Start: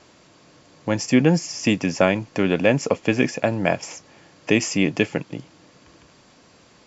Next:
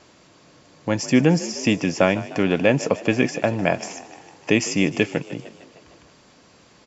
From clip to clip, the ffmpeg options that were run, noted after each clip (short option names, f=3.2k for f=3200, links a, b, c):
-filter_complex "[0:a]asplit=7[a][b][c][d][e][f][g];[b]adelay=152,afreqshift=45,volume=-17dB[h];[c]adelay=304,afreqshift=90,volume=-21.3dB[i];[d]adelay=456,afreqshift=135,volume=-25.6dB[j];[e]adelay=608,afreqshift=180,volume=-29.9dB[k];[f]adelay=760,afreqshift=225,volume=-34.2dB[l];[g]adelay=912,afreqshift=270,volume=-38.5dB[m];[a][h][i][j][k][l][m]amix=inputs=7:normalize=0"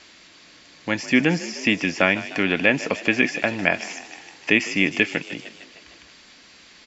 -filter_complex "[0:a]acrossover=split=2800[a][b];[b]acompressor=threshold=-40dB:ratio=4:attack=1:release=60[c];[a][c]amix=inputs=2:normalize=0,equalizer=f=125:t=o:w=1:g=-12,equalizer=f=500:t=o:w=1:g=-6,equalizer=f=1k:t=o:w=1:g=-4,equalizer=f=2k:t=o:w=1:g=7,equalizer=f=4k:t=o:w=1:g=7,volume=1.5dB"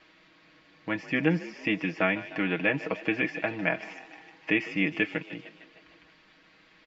-af "lowpass=2.5k,aecho=1:1:6.3:0.77,volume=-8dB"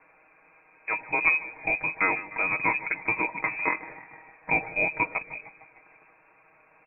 -af "lowpass=f=2.3k:t=q:w=0.5098,lowpass=f=2.3k:t=q:w=0.6013,lowpass=f=2.3k:t=q:w=0.9,lowpass=f=2.3k:t=q:w=2.563,afreqshift=-2700,volume=1.5dB"